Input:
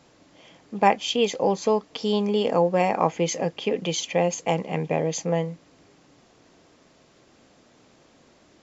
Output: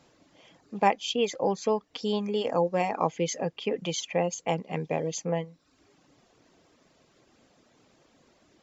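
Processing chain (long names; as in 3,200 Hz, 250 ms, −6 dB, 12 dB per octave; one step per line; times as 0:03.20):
reverb reduction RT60 0.68 s
level −4 dB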